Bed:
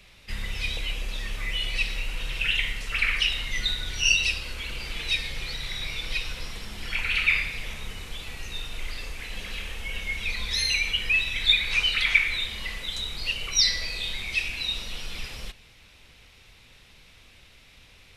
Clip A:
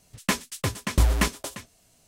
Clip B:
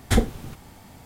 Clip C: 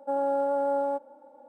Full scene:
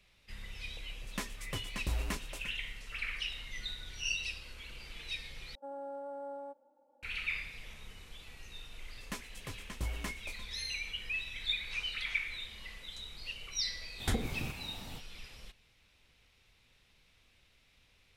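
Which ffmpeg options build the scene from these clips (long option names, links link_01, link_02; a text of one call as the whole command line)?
ffmpeg -i bed.wav -i cue0.wav -i cue1.wav -i cue2.wav -filter_complex "[1:a]asplit=2[link_01][link_02];[0:a]volume=-14dB[link_03];[link_01]alimiter=limit=-11.5dB:level=0:latency=1:release=71[link_04];[2:a]acompressor=threshold=-26dB:ratio=6:attack=3.2:release=140:knee=1:detection=peak[link_05];[link_03]asplit=2[link_06][link_07];[link_06]atrim=end=5.554[link_08];[3:a]atrim=end=1.48,asetpts=PTS-STARTPTS,volume=-16.5dB[link_09];[link_07]atrim=start=7.026[link_10];[link_04]atrim=end=2.07,asetpts=PTS-STARTPTS,volume=-13dB,afade=type=in:duration=0.004:curve=hsin,afade=type=out:start_time=2.066:duration=0.004:curve=hsin,adelay=890[link_11];[link_02]atrim=end=2.07,asetpts=PTS-STARTPTS,volume=-17.5dB,afade=type=in:duration=0.004:curve=hsin,afade=type=out:start_time=2.066:duration=0.004:curve=hsin,adelay=8830[link_12];[link_05]atrim=end=1.05,asetpts=PTS-STARTPTS,volume=-1.5dB,afade=type=in:duration=0.05,afade=type=out:start_time=1:duration=0.05,adelay=13970[link_13];[link_08][link_09]acrossfade=duration=0.004:curve1=hsin:curve2=hsin[link_14];[link_14][link_10]acrossfade=duration=0.004:curve1=hsin:curve2=hsin[link_15];[link_15][link_11][link_12][link_13]amix=inputs=4:normalize=0" out.wav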